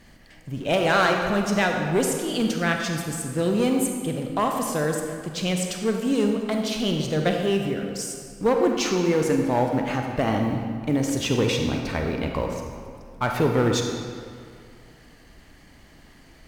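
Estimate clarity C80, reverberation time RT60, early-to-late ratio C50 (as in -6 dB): 4.5 dB, 2.2 s, 3.5 dB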